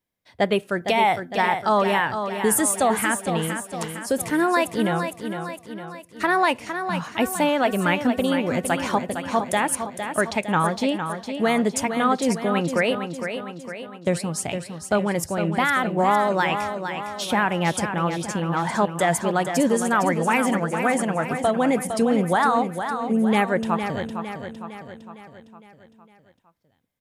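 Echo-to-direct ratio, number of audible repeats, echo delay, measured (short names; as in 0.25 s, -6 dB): -6.5 dB, 5, 0.458 s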